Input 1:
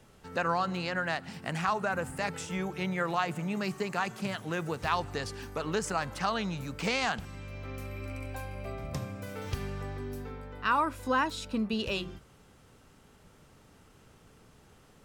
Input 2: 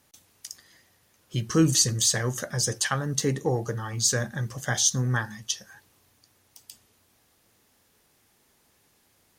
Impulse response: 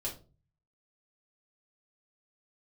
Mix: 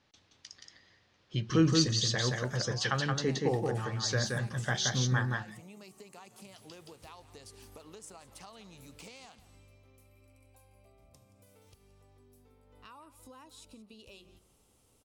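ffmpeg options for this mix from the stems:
-filter_complex "[0:a]equalizer=f=160:t=o:w=0.67:g=-7,equalizer=f=1600:t=o:w=0.67:g=-11,equalizer=f=10000:t=o:w=0.67:g=7,acompressor=threshold=0.00794:ratio=6,adelay=2200,afade=t=out:st=9.06:d=0.77:silence=0.334965,afade=t=in:st=12.65:d=0.24:silence=0.446684,asplit=2[s0][s1];[s1]volume=0.158[s2];[1:a]lowpass=f=4600:w=0.5412,lowpass=f=4600:w=1.3066,volume=0.596,asplit=3[s3][s4][s5];[s3]atrim=end=5.45,asetpts=PTS-STARTPTS,afade=t=out:st=5.446:d=0.004:c=hsin[s6];[s4]atrim=start=5.45:end=6.49,asetpts=PTS-STARTPTS,volume=0[s7];[s5]atrim=start=6.49,asetpts=PTS-STARTPTS,afade=t=in:d=0.004:c=hsin[s8];[s6][s7][s8]concat=n=3:v=0:a=1,asplit=2[s9][s10];[s10]volume=0.668[s11];[s2][s11]amix=inputs=2:normalize=0,aecho=0:1:174:1[s12];[s0][s9][s12]amix=inputs=3:normalize=0,highshelf=f=4700:g=5.5"

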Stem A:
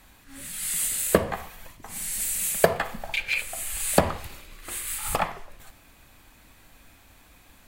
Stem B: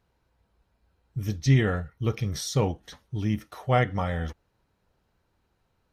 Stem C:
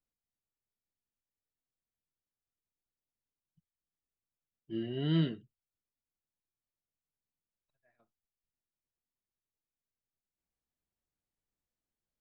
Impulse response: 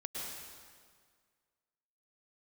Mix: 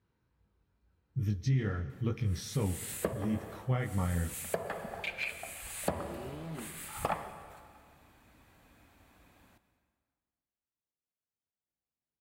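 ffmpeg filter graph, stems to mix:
-filter_complex "[0:a]adelay=1900,volume=0.501,asplit=2[s0][s1];[s1]volume=0.335[s2];[1:a]equalizer=f=680:w=1.3:g=-9,volume=1.12,asplit=3[s3][s4][s5];[s4]volume=0.0794[s6];[2:a]asoftclip=type=tanh:threshold=0.0133,adelay=1300,volume=0.944,asplit=2[s7][s8];[s8]volume=0.188[s9];[s5]apad=whole_len=422333[s10];[s0][s10]sidechaincompress=threshold=0.0158:ratio=8:attack=16:release=135[s11];[s3][s7]amix=inputs=2:normalize=0,flanger=delay=19.5:depth=4.4:speed=2.3,alimiter=limit=0.075:level=0:latency=1:release=223,volume=1[s12];[3:a]atrim=start_sample=2205[s13];[s2][s6][s9]amix=inputs=3:normalize=0[s14];[s14][s13]afir=irnorm=-1:irlink=0[s15];[s11][s12][s15]amix=inputs=3:normalize=0,highpass=61,highshelf=f=2300:g=-10,alimiter=limit=0.141:level=0:latency=1:release=417"

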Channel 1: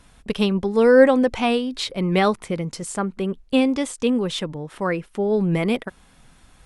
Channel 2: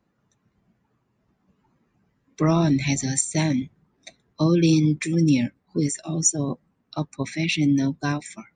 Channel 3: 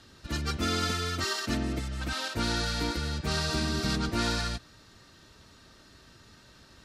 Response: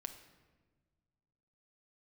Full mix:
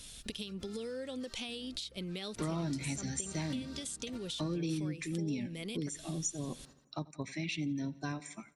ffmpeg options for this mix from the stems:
-filter_complex "[0:a]firequalizer=gain_entry='entry(500,0);entry(900,-10);entry(3400,15)':delay=0.05:min_phase=1,acompressor=threshold=0.0794:ratio=5,volume=0.631[s0];[1:a]volume=0.422,asplit=3[s1][s2][s3];[s2]volume=0.0794[s4];[2:a]volume=0.422[s5];[s3]apad=whole_len=301881[s6];[s5][s6]sidechaingate=range=0.282:threshold=0.00126:ratio=16:detection=peak[s7];[s0][s7]amix=inputs=2:normalize=0,acompressor=threshold=0.0141:ratio=6,volume=1[s8];[s4]aecho=0:1:87|174|261|348|435|522|609|696:1|0.52|0.27|0.141|0.0731|0.038|0.0198|0.0103[s9];[s1][s8][s9]amix=inputs=3:normalize=0,acompressor=threshold=0.0141:ratio=2.5"

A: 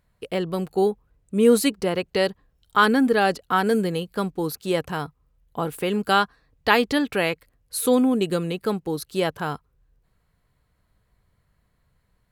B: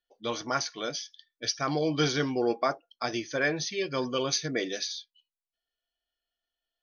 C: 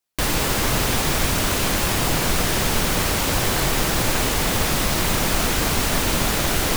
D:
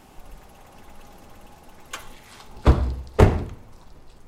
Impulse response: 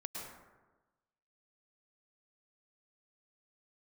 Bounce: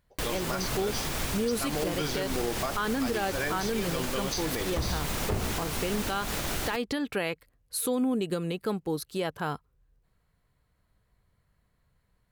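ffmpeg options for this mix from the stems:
-filter_complex "[0:a]volume=0.668[s0];[1:a]volume=1[s1];[2:a]volume=0.316[s2];[3:a]adelay=2100,volume=0.501[s3];[s0][s1][s2][s3]amix=inputs=4:normalize=0,alimiter=limit=0.1:level=0:latency=1:release=119"

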